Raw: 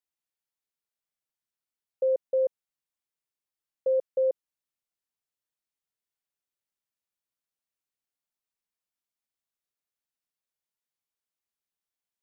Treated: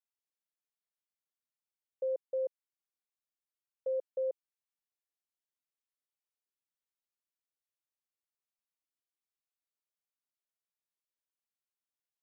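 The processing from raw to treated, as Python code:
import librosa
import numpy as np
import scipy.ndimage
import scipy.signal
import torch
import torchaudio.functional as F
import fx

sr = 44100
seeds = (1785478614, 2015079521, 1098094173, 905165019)

y = scipy.signal.sosfilt(scipy.signal.butter(2, 260.0, 'highpass', fs=sr, output='sos'), x)
y = y * librosa.db_to_amplitude(-8.5)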